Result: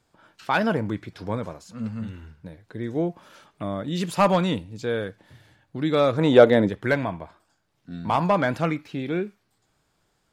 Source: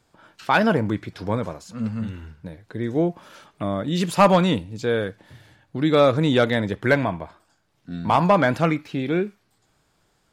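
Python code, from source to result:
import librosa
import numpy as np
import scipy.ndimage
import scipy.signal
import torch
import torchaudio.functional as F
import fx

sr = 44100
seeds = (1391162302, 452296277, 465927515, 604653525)

y = fx.peak_eq(x, sr, hz=fx.line((6.18, 930.0), (6.68, 310.0)), db=12.0, octaves=2.1, at=(6.18, 6.68), fade=0.02)
y = F.gain(torch.from_numpy(y), -4.0).numpy()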